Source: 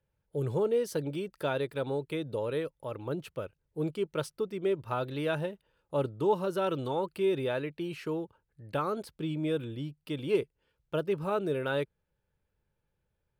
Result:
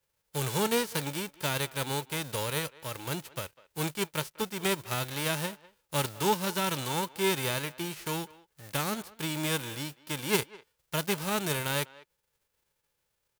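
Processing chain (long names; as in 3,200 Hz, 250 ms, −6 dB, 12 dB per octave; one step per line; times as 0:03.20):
spectral envelope flattened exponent 0.3
far-end echo of a speakerphone 200 ms, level −20 dB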